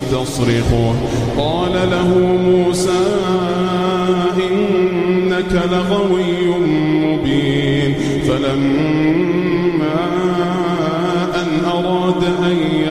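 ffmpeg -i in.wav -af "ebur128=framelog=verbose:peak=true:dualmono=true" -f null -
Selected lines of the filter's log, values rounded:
Integrated loudness:
  I:         -12.5 LUFS
  Threshold: -22.5 LUFS
Loudness range:
  LRA:         1.4 LU
  Threshold: -32.4 LUFS
  LRA low:   -13.2 LUFS
  LRA high:  -11.9 LUFS
True peak:
  Peak:       -2.2 dBFS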